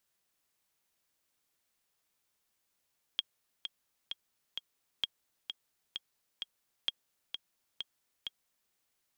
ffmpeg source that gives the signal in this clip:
-f lavfi -i "aevalsrc='pow(10,(-17-7.5*gte(mod(t,4*60/130),60/130))/20)*sin(2*PI*3260*mod(t,60/130))*exp(-6.91*mod(t,60/130)/0.03)':d=5.53:s=44100"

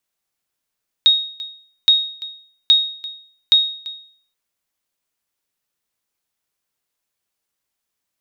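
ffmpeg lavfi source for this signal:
-f lavfi -i "aevalsrc='0.562*(sin(2*PI*3750*mod(t,0.82))*exp(-6.91*mod(t,0.82)/0.53)+0.112*sin(2*PI*3750*max(mod(t,0.82)-0.34,0))*exp(-6.91*max(mod(t,0.82)-0.34,0)/0.53))':d=3.28:s=44100"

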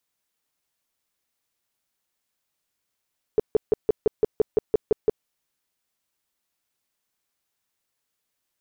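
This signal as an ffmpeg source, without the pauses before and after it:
-f lavfi -i "aevalsrc='0.211*sin(2*PI*431*mod(t,0.17))*lt(mod(t,0.17),7/431)':d=1.87:s=44100"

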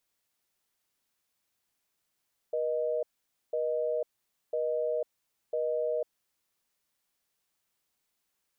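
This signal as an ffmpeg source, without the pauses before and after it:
-f lavfi -i "aevalsrc='0.0316*(sin(2*PI*480*t)+sin(2*PI*620*t))*clip(min(mod(t,1),0.5-mod(t,1))/0.005,0,1)':d=3.62:s=44100"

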